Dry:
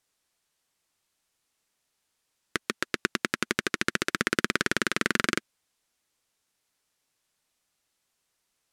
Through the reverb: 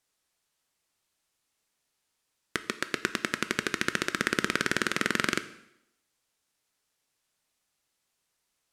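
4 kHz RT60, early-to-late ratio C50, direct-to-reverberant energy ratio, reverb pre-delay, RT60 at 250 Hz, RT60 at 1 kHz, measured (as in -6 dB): 0.75 s, 14.5 dB, 11.0 dB, 6 ms, 0.75 s, 0.80 s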